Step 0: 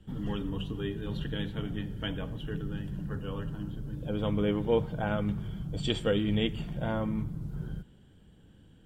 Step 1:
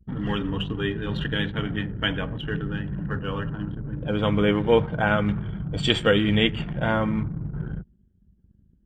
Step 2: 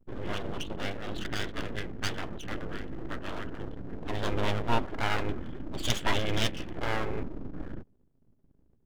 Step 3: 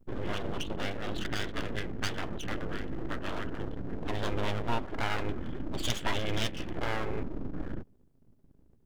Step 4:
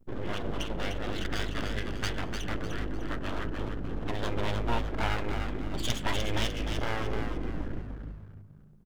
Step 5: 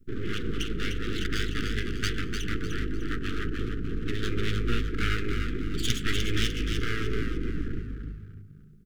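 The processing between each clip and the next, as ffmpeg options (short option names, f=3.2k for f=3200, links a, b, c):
-af "highpass=40,anlmdn=0.0251,equalizer=f=1.8k:t=o:w=1.7:g=8.5,volume=6.5dB"
-af "aeval=exprs='abs(val(0))':c=same,volume=-5dB"
-af "acompressor=threshold=-33dB:ratio=2,volume=3.5dB"
-filter_complex "[0:a]asplit=5[a][b][c][d][e];[b]adelay=300,afreqshift=-51,volume=-6dB[f];[c]adelay=600,afreqshift=-102,volume=-14.6dB[g];[d]adelay=900,afreqshift=-153,volume=-23.3dB[h];[e]adelay=1200,afreqshift=-204,volume=-31.9dB[i];[a][f][g][h][i]amix=inputs=5:normalize=0"
-af "asuperstop=centerf=760:order=12:qfactor=0.95,volume=3.5dB"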